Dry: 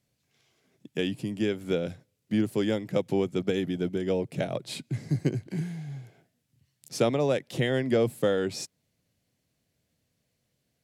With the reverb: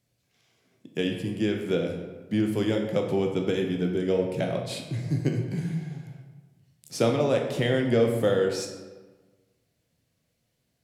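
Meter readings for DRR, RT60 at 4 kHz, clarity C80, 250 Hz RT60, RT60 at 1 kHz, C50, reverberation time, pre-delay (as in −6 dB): 2.0 dB, 0.80 s, 7.0 dB, 1.4 s, 1.3 s, 5.0 dB, 1.3 s, 13 ms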